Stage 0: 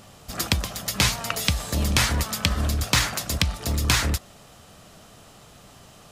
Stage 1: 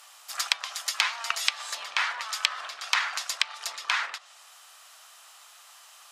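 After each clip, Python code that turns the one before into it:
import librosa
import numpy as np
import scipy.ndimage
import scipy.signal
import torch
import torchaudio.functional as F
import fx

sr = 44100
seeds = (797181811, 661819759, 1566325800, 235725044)

y = fx.env_lowpass_down(x, sr, base_hz=2400.0, full_db=-17.5)
y = scipy.signal.sosfilt(scipy.signal.butter(4, 920.0, 'highpass', fs=sr, output='sos'), y)
y = fx.high_shelf(y, sr, hz=7900.0, db=4.0)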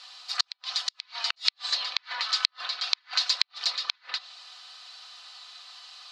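y = x + 0.62 * np.pad(x, (int(4.0 * sr / 1000.0), 0))[:len(x)]
y = fx.gate_flip(y, sr, shuts_db=-13.0, range_db=-42)
y = fx.lowpass_res(y, sr, hz=4300.0, q=5.2)
y = y * librosa.db_to_amplitude(-1.5)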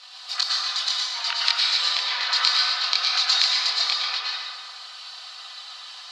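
y = fx.chorus_voices(x, sr, voices=6, hz=0.55, base_ms=24, depth_ms=1.9, mix_pct=45)
y = y + 10.0 ** (-7.0 / 20.0) * np.pad(y, (int(116 * sr / 1000.0), 0))[:len(y)]
y = fx.rev_plate(y, sr, seeds[0], rt60_s=1.8, hf_ratio=0.5, predelay_ms=95, drr_db=-3.5)
y = y * librosa.db_to_amplitude(5.5)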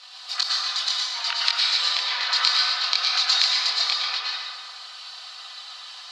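y = fx.end_taper(x, sr, db_per_s=250.0)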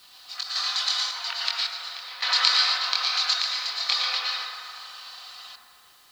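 y = fx.tremolo_random(x, sr, seeds[1], hz=1.8, depth_pct=90)
y = fx.echo_wet_bandpass(y, sr, ms=81, feedback_pct=80, hz=860.0, wet_db=-7.0)
y = fx.quant_dither(y, sr, seeds[2], bits=10, dither='triangular')
y = y * librosa.db_to_amplitude(1.0)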